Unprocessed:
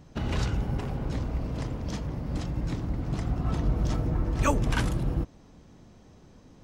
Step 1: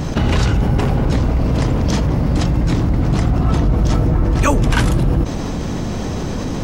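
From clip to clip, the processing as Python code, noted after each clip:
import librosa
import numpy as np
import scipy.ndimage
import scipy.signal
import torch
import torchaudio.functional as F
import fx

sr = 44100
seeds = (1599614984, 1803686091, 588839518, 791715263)

y = fx.env_flatten(x, sr, amount_pct=70)
y = F.gain(torch.from_numpy(y), 8.0).numpy()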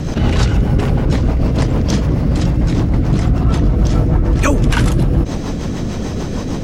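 y = fx.rotary(x, sr, hz=6.7)
y = F.gain(torch.from_numpy(y), 3.0).numpy()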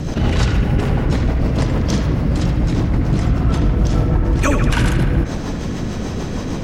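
y = fx.echo_banded(x, sr, ms=76, feedback_pct=77, hz=1800.0, wet_db=-4.5)
y = F.gain(torch.from_numpy(y), -2.5).numpy()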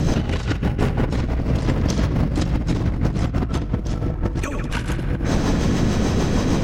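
y = fx.over_compress(x, sr, threshold_db=-19.0, ratio=-0.5)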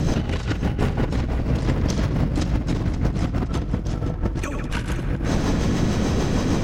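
y = fx.echo_feedback(x, sr, ms=523, feedback_pct=34, wet_db=-12)
y = F.gain(torch.from_numpy(y), -2.0).numpy()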